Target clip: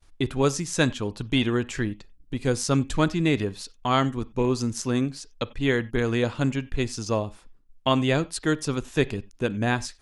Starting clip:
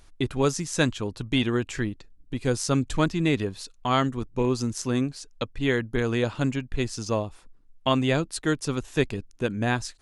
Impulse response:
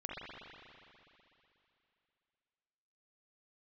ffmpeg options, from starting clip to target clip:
-filter_complex "[0:a]agate=range=-33dB:threshold=-48dB:ratio=3:detection=peak,asplit=2[a][b];[1:a]atrim=start_sample=2205,atrim=end_sample=6174,asetrate=61740,aresample=44100[c];[b][c]afir=irnorm=-1:irlink=0,volume=-12dB[d];[a][d]amix=inputs=2:normalize=0"

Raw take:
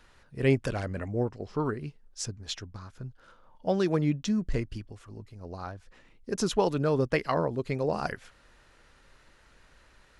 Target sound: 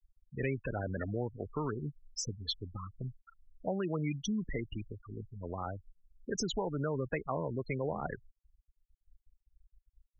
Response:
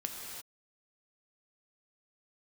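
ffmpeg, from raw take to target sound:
-filter_complex "[0:a]acrossover=split=140|790[a][b][c];[a]acompressor=threshold=-39dB:ratio=4[d];[b]acompressor=threshold=-33dB:ratio=4[e];[c]acompressor=threshold=-46dB:ratio=4[f];[d][e][f]amix=inputs=3:normalize=0,asplit=2[g][h];[h]alimiter=level_in=7dB:limit=-24dB:level=0:latency=1:release=45,volume=-7dB,volume=0.5dB[i];[g][i]amix=inputs=2:normalize=0,afftfilt=real='re*gte(hypot(re,im),0.0282)':imag='im*gte(hypot(re,im),0.0282)':win_size=1024:overlap=0.75,tiltshelf=f=1.4k:g=-7.5,volume=1.5dB"

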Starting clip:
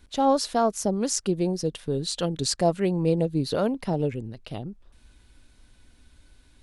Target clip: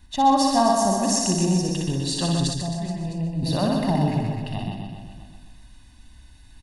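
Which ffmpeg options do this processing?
-filter_complex "[0:a]aecho=1:1:1.1:0.78,asplit=2[a][b];[b]aecho=0:1:125|250|375|500|625|750|875:0.562|0.315|0.176|0.0988|0.0553|0.031|0.0173[c];[a][c]amix=inputs=2:normalize=0,asettb=1/sr,asplit=3[d][e][f];[d]atrim=end=2.474[g];[e]atrim=start=2.47:end=3.43,asetpts=PTS-STARTPTS,afade=t=in:d=0.004:c=qsin,afade=t=out:st=0.956:d=0.004:c=qsin,acrossover=split=130[h][i];[i]acompressor=threshold=-37dB:ratio=4[j];[h][j]amix=inputs=2:normalize=0[k];[f]atrim=start=3.426[l];[g][k]acrossfade=d=0.004:c1=hsin:c2=qsin[m];[m][l]acrossfade=d=0.004:c1=qsin:c2=hsin,asplit=2[n][o];[o]aecho=0:1:60|144|261.6|426.2|656.7:0.631|0.398|0.251|0.158|0.1[p];[n][p]amix=inputs=2:normalize=0"

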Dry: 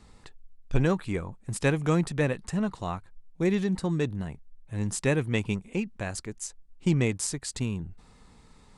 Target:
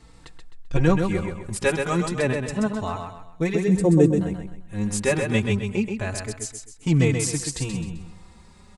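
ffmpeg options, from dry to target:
-filter_complex "[0:a]asettb=1/sr,asplit=3[a][b][c];[a]atrim=end=3.554[d];[b]atrim=start=3.55:end=4.21,asetpts=PTS-STARTPTS,afade=t=in:d=0.004:c=qsin,afade=t=out:st=0.656:d=0.004:c=qsin,equalizer=f=250:t=o:w=1:g=6,equalizer=f=500:t=o:w=1:g=11,equalizer=f=1k:t=o:w=1:g=-6,equalizer=f=2k:t=o:w=1:g=-4,equalizer=f=4k:t=o:w=1:g=-11,equalizer=f=8k:t=o:w=1:g=8[e];[c]atrim=start=4.206[f];[d][e]acrossfade=d=0.004:c1=hsin:c2=qsin[g];[g][f]acrossfade=d=0.004:c1=qsin:c2=hsin,asplit=2[h][i];[i]aecho=0:1:130|260|390|520:0.531|0.196|0.0727|0.0269[j];[h][j]amix=inputs=2:normalize=0,asplit=2[k][l];[l]adelay=4,afreqshift=0.28[m];[k][m]amix=inputs=2:normalize=1,volume=7dB"

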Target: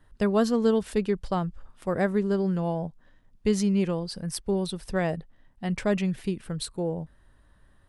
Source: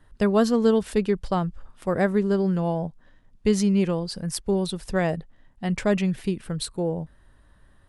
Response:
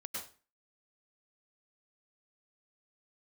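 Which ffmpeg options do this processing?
-filter_complex "[0:a]asettb=1/sr,asplit=3[a][b][c];[a]atrim=end=3.964[d];[b]atrim=start=3.96:end=5.92,asetpts=PTS-STARTPTS,afade=t=in:d=0.004:c=qsin,afade=t=out:st=1.956:d=0.004:c=qsin,bandreject=f=7k:w=13[e];[c]atrim=start=5.916[f];[d][e]acrossfade=d=0.004:c1=hsin:c2=qsin[g];[g][f]acrossfade=d=0.004:c1=qsin:c2=hsin,volume=-3dB"

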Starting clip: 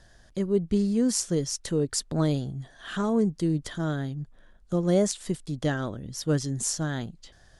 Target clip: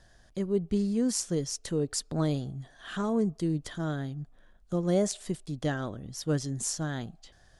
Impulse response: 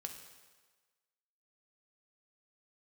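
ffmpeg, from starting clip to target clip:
-filter_complex "[0:a]asplit=2[a][b];[b]asplit=3[c][d][e];[c]bandpass=f=730:t=q:w=8,volume=0dB[f];[d]bandpass=f=1.09k:t=q:w=8,volume=-6dB[g];[e]bandpass=f=2.44k:t=q:w=8,volume=-9dB[h];[f][g][h]amix=inputs=3:normalize=0[i];[1:a]atrim=start_sample=2205,asetrate=70560,aresample=44100[j];[i][j]afir=irnorm=-1:irlink=0,volume=-1.5dB[k];[a][k]amix=inputs=2:normalize=0,volume=-3.5dB"

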